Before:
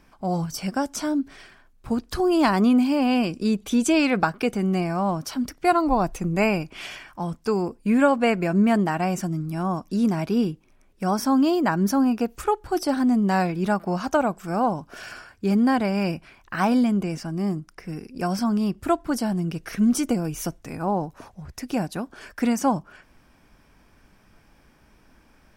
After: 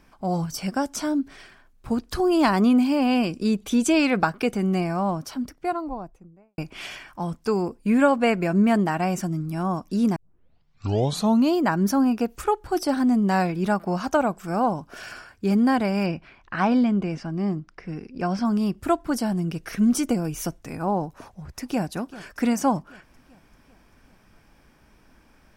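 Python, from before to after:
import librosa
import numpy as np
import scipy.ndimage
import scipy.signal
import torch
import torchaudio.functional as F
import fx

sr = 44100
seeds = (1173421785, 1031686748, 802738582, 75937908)

y = fx.studio_fade_out(x, sr, start_s=4.78, length_s=1.8)
y = fx.lowpass(y, sr, hz=4200.0, slope=12, at=(16.06, 18.45))
y = fx.echo_throw(y, sr, start_s=21.06, length_s=0.77, ms=390, feedback_pct=60, wet_db=-17.0)
y = fx.edit(y, sr, fx.tape_start(start_s=10.16, length_s=1.38), tone=tone)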